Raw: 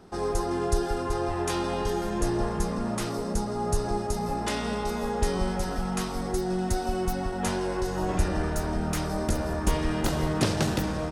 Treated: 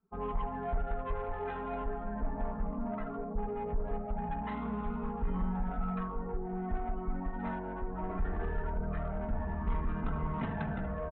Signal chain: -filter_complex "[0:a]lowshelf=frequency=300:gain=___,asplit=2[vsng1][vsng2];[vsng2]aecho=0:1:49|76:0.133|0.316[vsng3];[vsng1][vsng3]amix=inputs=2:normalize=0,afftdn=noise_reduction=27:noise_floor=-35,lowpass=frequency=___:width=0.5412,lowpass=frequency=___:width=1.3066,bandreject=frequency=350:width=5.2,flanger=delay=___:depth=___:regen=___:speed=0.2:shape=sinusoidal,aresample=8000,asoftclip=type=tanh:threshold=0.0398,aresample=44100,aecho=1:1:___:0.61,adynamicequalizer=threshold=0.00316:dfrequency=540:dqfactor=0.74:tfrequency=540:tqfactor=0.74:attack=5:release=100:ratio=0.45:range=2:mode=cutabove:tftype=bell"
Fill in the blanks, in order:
-2.5, 2k, 2k, 0.8, 2.5, 28, 4.5